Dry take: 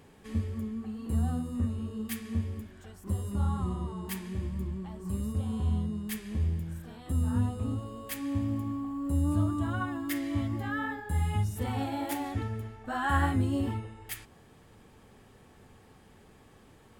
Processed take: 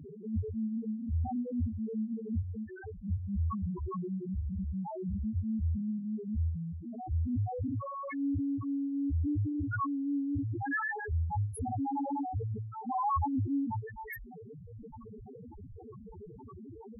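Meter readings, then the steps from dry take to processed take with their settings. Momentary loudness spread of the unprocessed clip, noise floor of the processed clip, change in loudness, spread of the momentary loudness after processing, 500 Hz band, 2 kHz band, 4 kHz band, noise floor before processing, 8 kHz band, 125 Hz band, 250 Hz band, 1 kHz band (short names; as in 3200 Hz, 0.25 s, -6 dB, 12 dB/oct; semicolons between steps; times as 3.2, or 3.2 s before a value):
9 LU, -49 dBFS, -2.0 dB, 17 LU, -2.0 dB, -2.0 dB, under -35 dB, -57 dBFS, under -10 dB, -3.5 dB, -0.5 dB, +0.5 dB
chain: reverb removal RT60 0.81 s; low shelf 330 Hz -7 dB; loudest bins only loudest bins 1; fast leveller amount 50%; gain +8 dB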